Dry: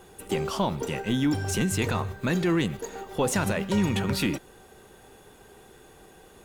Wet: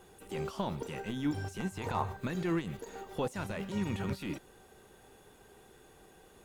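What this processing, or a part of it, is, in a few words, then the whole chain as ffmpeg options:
de-esser from a sidechain: -filter_complex "[0:a]asettb=1/sr,asplit=3[a][b][c];[a]atrim=end=1.604[d];[b]atrim=start=1.6:end=2.17,asetpts=PTS-STARTPTS,afade=t=in:d=0.004:c=qsin,afade=t=out:st=0.566:d=0.004:c=qsin,equalizer=f=880:t=o:w=0.8:g=12[e];[c]atrim=start=2.166[f];[d][e]acrossfade=d=0.004:c1=hsin:c2=qsin[g];[g][f]acrossfade=d=0.004:c1=qsin:c2=hsin,asplit=2[h][i];[i]highpass=5.6k,apad=whole_len=284064[j];[h][j]sidechaincompress=threshold=-47dB:ratio=4:attack=0.75:release=24,volume=-6.5dB"

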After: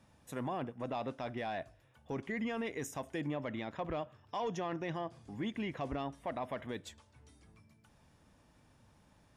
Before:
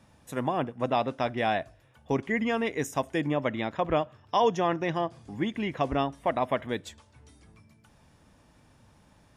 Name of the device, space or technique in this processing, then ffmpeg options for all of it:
soft clipper into limiter: -af "asoftclip=type=tanh:threshold=-15dB,alimiter=limit=-23.5dB:level=0:latency=1:release=21,volume=-6dB"

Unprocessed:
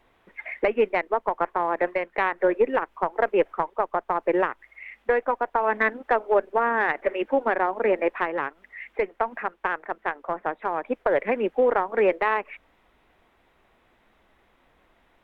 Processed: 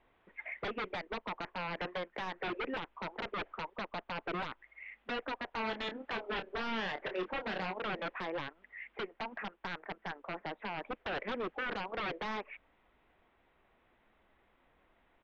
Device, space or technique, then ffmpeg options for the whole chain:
synthesiser wavefolder: -filter_complex "[0:a]aeval=exprs='0.0668*(abs(mod(val(0)/0.0668+3,4)-2)-1)':c=same,lowpass=f=3.6k:w=0.5412,lowpass=f=3.6k:w=1.3066,asplit=3[a][b][c];[a]afade=t=out:st=5.51:d=0.02[d];[b]asplit=2[e][f];[f]adelay=27,volume=-7.5dB[g];[e][g]amix=inputs=2:normalize=0,afade=t=in:st=5.51:d=0.02,afade=t=out:st=7.72:d=0.02[h];[c]afade=t=in:st=7.72:d=0.02[i];[d][h][i]amix=inputs=3:normalize=0,volume=-7.5dB"

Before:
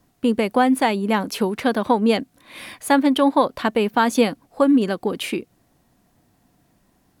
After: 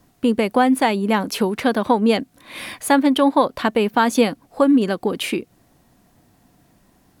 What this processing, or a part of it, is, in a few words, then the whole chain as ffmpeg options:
parallel compression: -filter_complex "[0:a]asplit=2[a][b];[b]acompressor=threshold=-30dB:ratio=6,volume=-2.5dB[c];[a][c]amix=inputs=2:normalize=0"

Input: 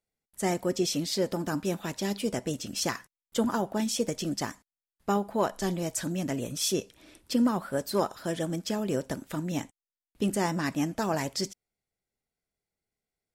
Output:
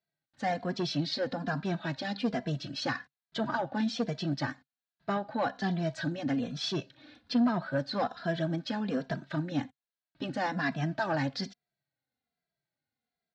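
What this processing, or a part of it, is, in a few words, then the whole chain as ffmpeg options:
barber-pole flanger into a guitar amplifier: -filter_complex "[0:a]asplit=2[a][b];[b]adelay=2.6,afreqshift=-1.2[c];[a][c]amix=inputs=2:normalize=1,asoftclip=type=tanh:threshold=-23.5dB,highpass=88,equalizer=f=140:t=q:w=4:g=9,equalizer=f=260:t=q:w=4:g=6,equalizer=f=400:t=q:w=4:g=-6,equalizer=f=700:t=q:w=4:g=7,equalizer=f=1.6k:t=q:w=4:g=10,equalizer=f=4.1k:t=q:w=4:g=9,lowpass=f=4.5k:w=0.5412,lowpass=f=4.5k:w=1.3066"

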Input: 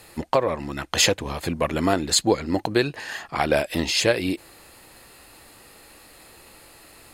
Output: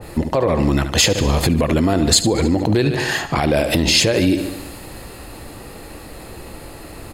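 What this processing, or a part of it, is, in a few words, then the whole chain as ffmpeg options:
mastering chain: -af "equalizer=f=250:t=o:w=2.7:g=-2.5,aecho=1:1:73|146|219|292|365|438:0.178|0.105|0.0619|0.0365|0.0215|0.0127,acompressor=threshold=-25dB:ratio=3,tiltshelf=f=760:g=8,asoftclip=type=hard:threshold=-12dB,alimiter=level_in=21dB:limit=-1dB:release=50:level=0:latency=1,adynamicequalizer=threshold=0.0282:dfrequency=2100:dqfactor=0.7:tfrequency=2100:tqfactor=0.7:attack=5:release=100:ratio=0.375:range=3.5:mode=boostabove:tftype=highshelf,volume=-7dB"

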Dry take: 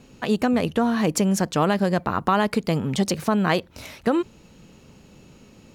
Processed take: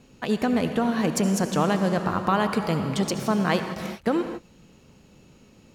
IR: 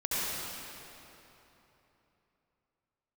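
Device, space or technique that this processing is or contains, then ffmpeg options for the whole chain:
keyed gated reverb: -filter_complex "[0:a]asplit=3[a][b][c];[1:a]atrim=start_sample=2205[d];[b][d]afir=irnorm=-1:irlink=0[e];[c]apad=whole_len=253278[f];[e][f]sidechaingate=range=-33dB:threshold=-40dB:ratio=16:detection=peak,volume=-14dB[g];[a][g]amix=inputs=2:normalize=0,volume=-4dB"

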